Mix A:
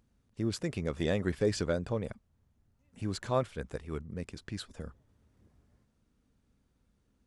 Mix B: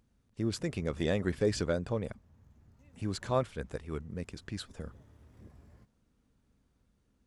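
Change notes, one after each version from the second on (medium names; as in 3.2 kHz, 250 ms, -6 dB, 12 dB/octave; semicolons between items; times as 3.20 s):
background +11.0 dB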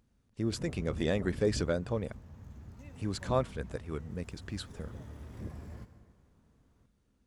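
background +10.0 dB; reverb: on, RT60 1.9 s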